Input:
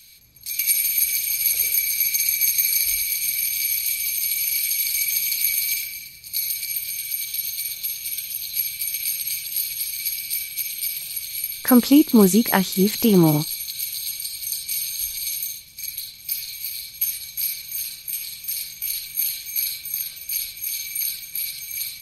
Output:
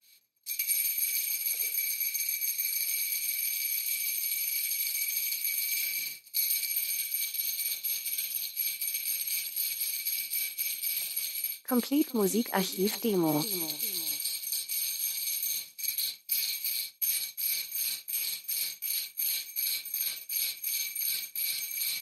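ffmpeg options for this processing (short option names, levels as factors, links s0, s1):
-af "highpass=300,aecho=1:1:388|776:0.075|0.0255,areverse,acompressor=threshold=0.02:ratio=6,areverse,agate=range=0.0224:threshold=0.0158:ratio=3:detection=peak,adynamicequalizer=threshold=0.00141:dfrequency=1600:dqfactor=0.7:tfrequency=1600:tqfactor=0.7:attack=5:release=100:ratio=0.375:range=2:mode=cutabove:tftype=highshelf,volume=2.66"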